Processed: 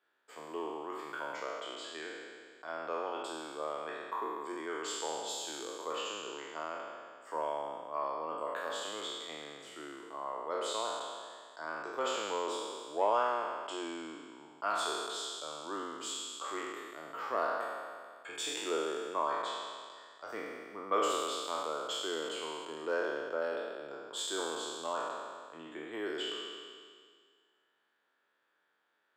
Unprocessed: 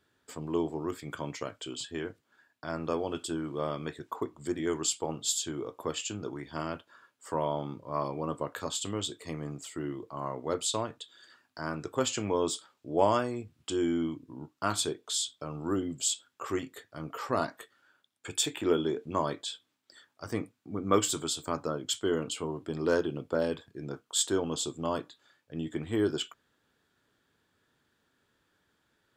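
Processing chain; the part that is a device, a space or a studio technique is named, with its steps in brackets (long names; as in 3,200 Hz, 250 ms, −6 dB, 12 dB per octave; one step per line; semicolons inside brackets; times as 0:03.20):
peak hold with a decay on every bin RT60 1.94 s
parallel distortion (in parallel at −12.5 dB: hard clipping −22 dBFS, distortion −11 dB)
on the sum: high-pass filter 230 Hz 12 dB per octave
three-way crossover with the lows and the highs turned down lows −15 dB, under 450 Hz, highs −13 dB, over 3,100 Hz
level −6 dB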